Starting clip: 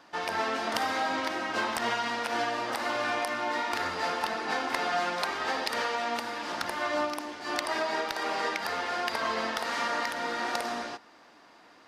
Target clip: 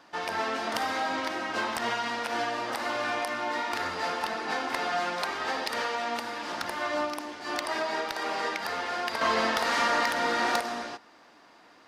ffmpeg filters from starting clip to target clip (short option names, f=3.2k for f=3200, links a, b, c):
-filter_complex "[0:a]asettb=1/sr,asplit=3[a][b][c];[a]atrim=end=9.214[d];[b]atrim=start=9.21:end=10.6,asetpts=PTS-STARTPTS,afade=t=in:d=0.004:c=qsin,afade=t=out:st=1.386:d=0.004:c=qsin,acontrast=48[e];[c]atrim=start=10.596[f];[d][e]acrossfade=d=0.004:c1=hsin:c2=qsin[g];[g][f]acrossfade=d=0.004:c1=qsin:c2=hsin,asoftclip=type=tanh:threshold=-15.5dB"